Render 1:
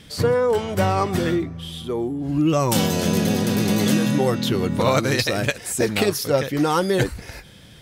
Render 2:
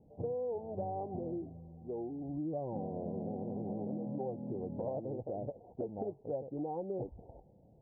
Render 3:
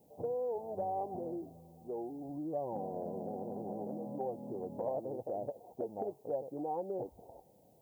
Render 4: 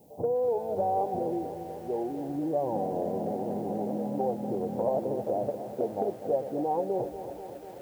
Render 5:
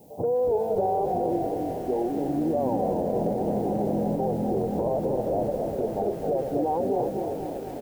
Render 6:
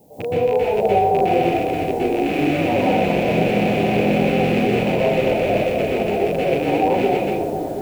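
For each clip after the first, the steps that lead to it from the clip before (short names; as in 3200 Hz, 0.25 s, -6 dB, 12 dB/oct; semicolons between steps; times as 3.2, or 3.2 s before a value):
steep low-pass 820 Hz 72 dB/oct; low shelf 460 Hz -11.5 dB; compressor 2.5:1, threshold -32 dBFS, peak gain reduction 9 dB; gain -5.5 dB
tilt +4.5 dB/oct; gain +5.5 dB
lo-fi delay 0.244 s, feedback 80%, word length 10-bit, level -12 dB; gain +8.5 dB
limiter -24 dBFS, peak gain reduction 7.5 dB; frequency-shifting echo 0.274 s, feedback 53%, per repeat -45 Hz, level -6 dB; gain +5.5 dB
rattling part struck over -32 dBFS, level -21 dBFS; plate-style reverb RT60 0.62 s, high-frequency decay 0.95×, pre-delay 0.11 s, DRR -6.5 dB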